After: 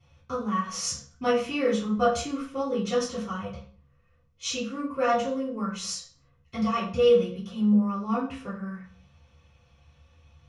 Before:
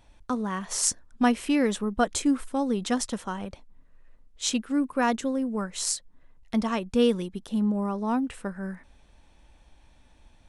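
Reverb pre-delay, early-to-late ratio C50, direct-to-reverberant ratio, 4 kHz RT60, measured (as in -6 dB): 3 ms, 5.5 dB, -13.0 dB, 0.40 s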